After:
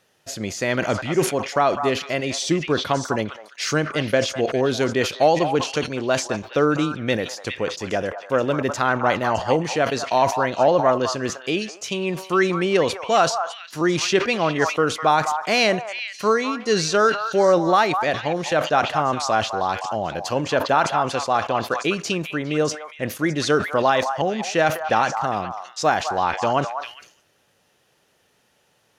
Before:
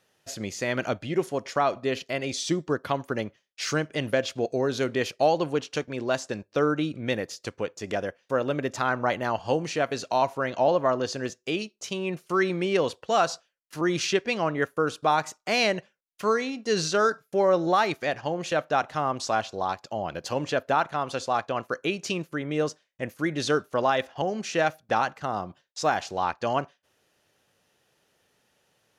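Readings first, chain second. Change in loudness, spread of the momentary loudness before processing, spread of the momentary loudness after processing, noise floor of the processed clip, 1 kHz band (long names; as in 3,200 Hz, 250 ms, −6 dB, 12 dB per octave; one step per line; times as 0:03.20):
+5.5 dB, 8 LU, 8 LU, −64 dBFS, +6.0 dB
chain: echo through a band-pass that steps 203 ms, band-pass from 1,000 Hz, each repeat 1.4 octaves, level −5.5 dB
level that may fall only so fast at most 120 dB per second
level +5 dB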